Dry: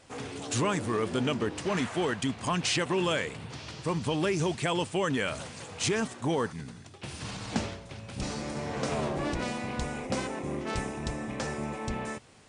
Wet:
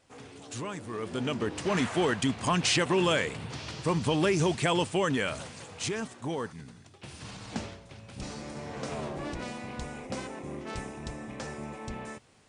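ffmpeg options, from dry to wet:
ffmpeg -i in.wav -af "volume=2.5dB,afade=type=in:start_time=0.87:duration=1.01:silence=0.266073,afade=type=out:start_time=4.74:duration=1.22:silence=0.421697" out.wav

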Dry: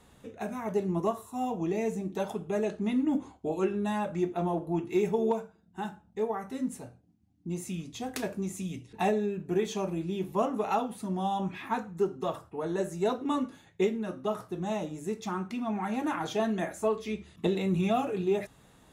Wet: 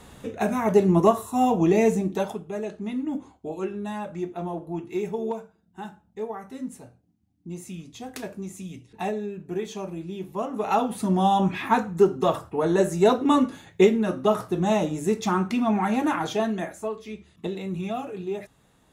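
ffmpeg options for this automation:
ffmpeg -i in.wav -af "volume=22.5dB,afade=type=out:start_time=1.86:duration=0.58:silence=0.237137,afade=type=in:start_time=10.48:duration=0.55:silence=0.266073,afade=type=out:start_time=15.59:duration=0.9:silence=0.446684,afade=type=out:start_time=16.49:duration=0.41:silence=0.501187" out.wav

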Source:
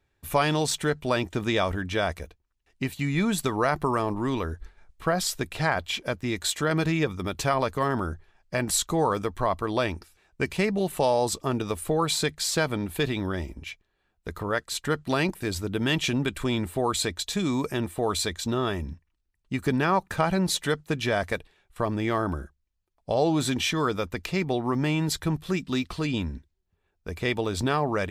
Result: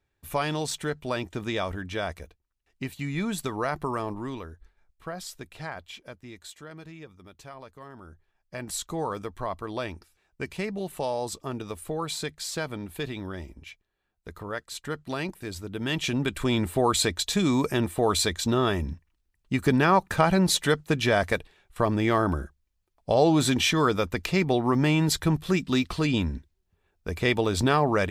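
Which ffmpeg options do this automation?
ffmpeg -i in.wav -af "volume=18dB,afade=type=out:start_time=4.08:duration=0.43:silence=0.446684,afade=type=out:start_time=5.64:duration=1.12:silence=0.398107,afade=type=in:start_time=7.97:duration=0.99:silence=0.223872,afade=type=in:start_time=15.71:duration=1:silence=0.334965" out.wav

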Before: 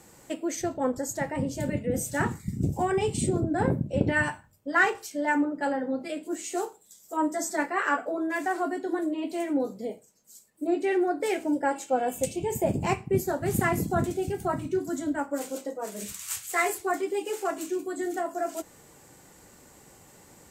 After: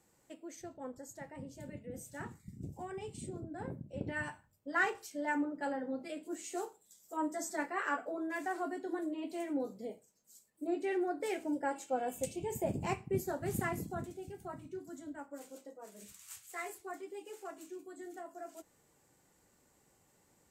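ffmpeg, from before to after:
ffmpeg -i in.wav -af "volume=-9dB,afade=type=in:start_time=3.82:duration=1:silence=0.375837,afade=type=out:start_time=13.49:duration=0.6:silence=0.421697" out.wav

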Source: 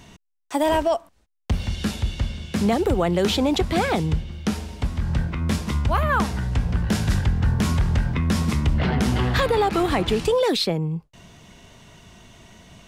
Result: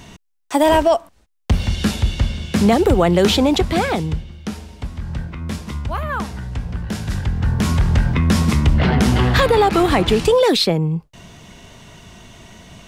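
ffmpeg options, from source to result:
ffmpeg -i in.wav -af "volume=15.5dB,afade=type=out:start_time=3.25:duration=1.13:silence=0.334965,afade=type=in:start_time=7.05:duration=1.02:silence=0.354813" out.wav

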